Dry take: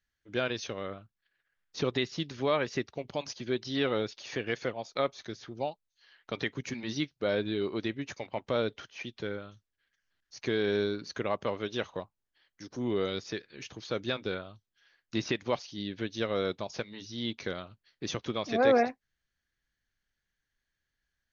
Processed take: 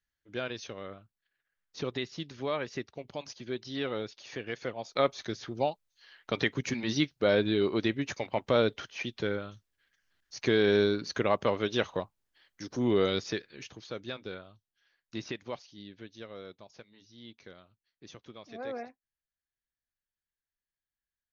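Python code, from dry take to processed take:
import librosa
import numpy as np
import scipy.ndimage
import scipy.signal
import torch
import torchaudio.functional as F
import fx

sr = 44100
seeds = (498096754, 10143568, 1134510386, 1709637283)

y = fx.gain(x, sr, db=fx.line((4.56, -4.5), (5.1, 4.5), (13.24, 4.5), (13.97, -6.5), (15.27, -6.5), (16.46, -15.0)))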